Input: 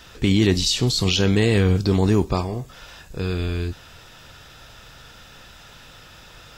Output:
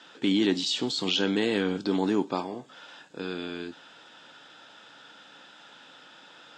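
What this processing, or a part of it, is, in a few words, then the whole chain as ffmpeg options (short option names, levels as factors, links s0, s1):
television speaker: -af "highpass=f=190:w=0.5412,highpass=f=190:w=1.3066,equalizer=f=290:t=q:w=4:g=8,equalizer=f=550:t=q:w=4:g=3,equalizer=f=860:t=q:w=4:g=7,equalizer=f=1500:t=q:w=4:g=7,equalizer=f=3300:t=q:w=4:g=7,equalizer=f=5800:t=q:w=4:g=-4,lowpass=f=7800:w=0.5412,lowpass=f=7800:w=1.3066,volume=0.376"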